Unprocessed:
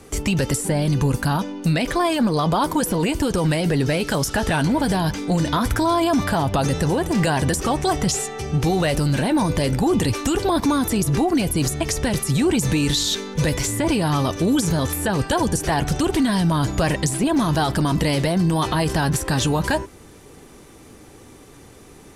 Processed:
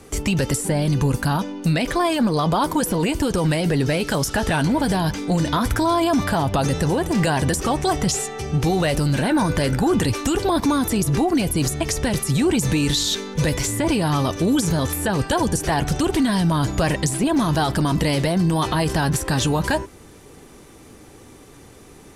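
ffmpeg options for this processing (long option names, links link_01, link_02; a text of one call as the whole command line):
ffmpeg -i in.wav -filter_complex "[0:a]asettb=1/sr,asplit=3[link_01][link_02][link_03];[link_01]atrim=end=9.234[link_04];[link_02]atrim=start=9.23:end=10.04,asetpts=PTS-STARTPTS,afade=type=in:duration=0.004:curve=qsin,afade=type=out:start_time=0.806:duration=0.004:curve=qsin,equalizer=frequency=1500:width_type=o:width=0.44:gain=9[link_05];[link_03]atrim=start=10.036[link_06];[link_04][link_05]acrossfade=duration=0.004:curve1=hsin:curve2=qsin[link_07];[link_07][link_06]acrossfade=duration=0.004:curve1=qsin:curve2=hsin" out.wav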